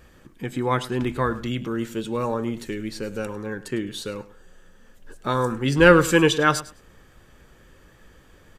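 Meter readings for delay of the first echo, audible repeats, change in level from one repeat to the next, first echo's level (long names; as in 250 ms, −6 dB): 104 ms, 2, −15.5 dB, −16.5 dB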